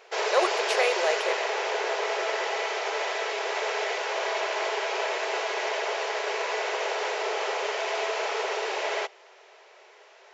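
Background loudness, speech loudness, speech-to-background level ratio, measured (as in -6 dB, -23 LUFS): -28.5 LUFS, -28.0 LUFS, 0.5 dB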